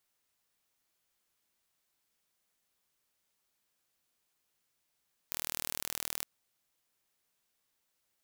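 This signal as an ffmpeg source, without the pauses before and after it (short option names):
-f lavfi -i "aevalsrc='0.376*eq(mod(n,1114),0)':d=0.91:s=44100"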